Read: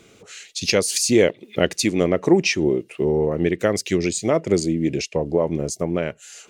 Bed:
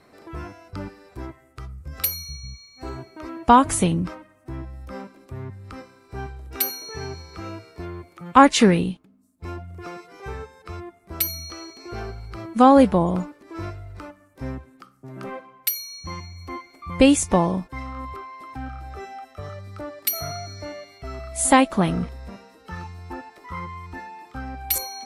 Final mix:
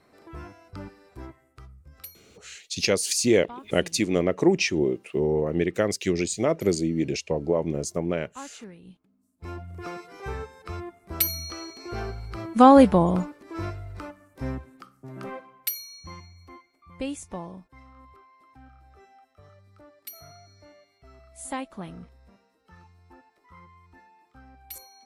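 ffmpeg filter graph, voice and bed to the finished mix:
ffmpeg -i stem1.wav -i stem2.wav -filter_complex "[0:a]adelay=2150,volume=-4dB[link_01];[1:a]volume=22.5dB,afade=type=out:start_time=1.25:duration=0.97:silence=0.0749894,afade=type=in:start_time=8.82:duration=1.06:silence=0.0375837,afade=type=out:start_time=14.64:duration=2.09:silence=0.133352[link_02];[link_01][link_02]amix=inputs=2:normalize=0" out.wav

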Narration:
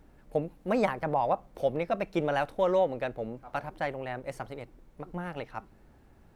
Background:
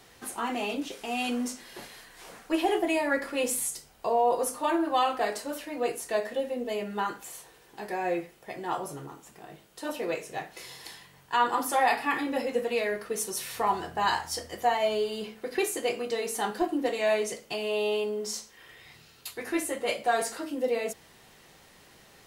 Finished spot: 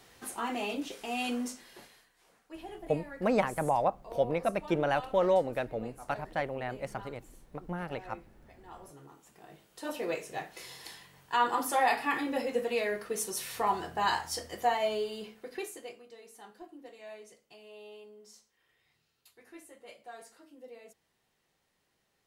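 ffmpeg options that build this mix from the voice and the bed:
ffmpeg -i stem1.wav -i stem2.wav -filter_complex "[0:a]adelay=2550,volume=-0.5dB[link_01];[1:a]volume=13.5dB,afade=type=out:start_time=1.33:duration=0.8:silence=0.158489,afade=type=in:start_time=8.71:duration=1.3:silence=0.149624,afade=type=out:start_time=14.66:duration=1.37:silence=0.112202[link_02];[link_01][link_02]amix=inputs=2:normalize=0" out.wav

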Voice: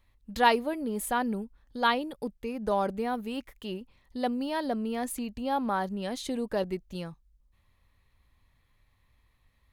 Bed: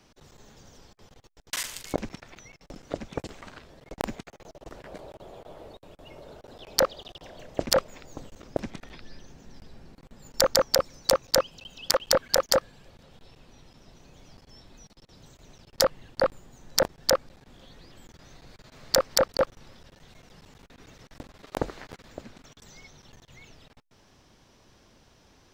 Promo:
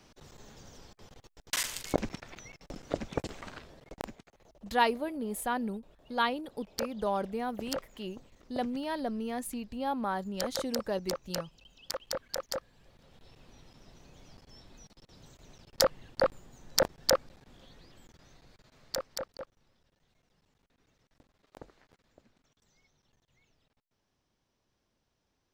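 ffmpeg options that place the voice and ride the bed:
ffmpeg -i stem1.wav -i stem2.wav -filter_complex "[0:a]adelay=4350,volume=-3.5dB[link_01];[1:a]volume=10.5dB,afade=type=out:start_time=3.57:duration=0.57:silence=0.211349,afade=type=in:start_time=12.62:duration=0.84:silence=0.298538,afade=type=out:start_time=17.18:duration=2.27:silence=0.133352[link_02];[link_01][link_02]amix=inputs=2:normalize=0" out.wav

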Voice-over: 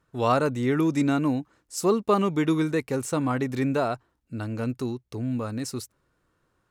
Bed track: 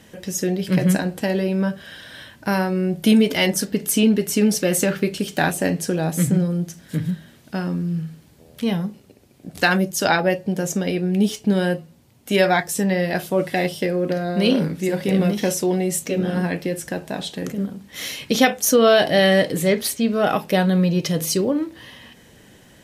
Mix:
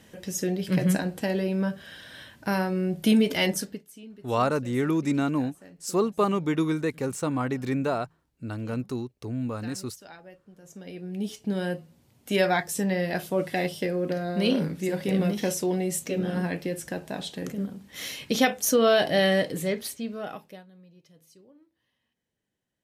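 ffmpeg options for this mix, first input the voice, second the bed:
ffmpeg -i stem1.wav -i stem2.wav -filter_complex "[0:a]adelay=4100,volume=-2dB[link_01];[1:a]volume=17.5dB,afade=type=out:start_time=3.51:duration=0.33:silence=0.0668344,afade=type=in:start_time=10.61:duration=1.48:silence=0.0707946,afade=type=out:start_time=19.21:duration=1.44:silence=0.0334965[link_02];[link_01][link_02]amix=inputs=2:normalize=0" out.wav

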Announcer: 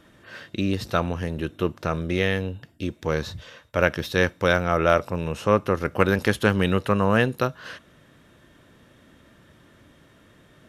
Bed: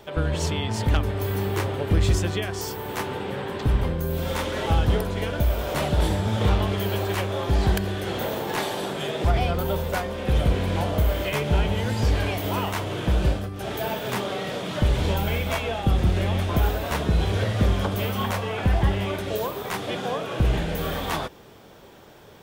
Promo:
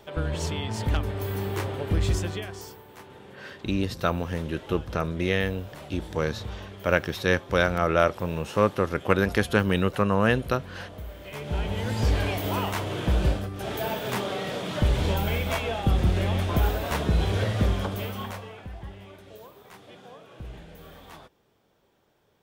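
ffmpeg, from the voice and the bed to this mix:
ffmpeg -i stem1.wav -i stem2.wav -filter_complex "[0:a]adelay=3100,volume=-2dB[link_01];[1:a]volume=12dB,afade=type=out:start_time=2.18:duration=0.68:silence=0.211349,afade=type=in:start_time=11.21:duration=0.85:silence=0.158489,afade=type=out:start_time=17.48:duration=1.19:silence=0.133352[link_02];[link_01][link_02]amix=inputs=2:normalize=0" out.wav

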